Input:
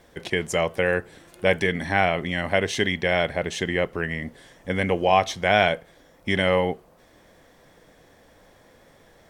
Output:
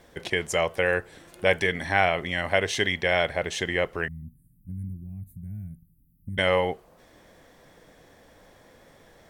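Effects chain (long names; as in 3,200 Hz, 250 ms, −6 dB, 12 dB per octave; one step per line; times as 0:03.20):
0:04.08–0:06.38: inverse Chebyshev band-stop filter 460–6,000 Hz, stop band 50 dB
dynamic equaliser 210 Hz, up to −7 dB, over −40 dBFS, Q 0.86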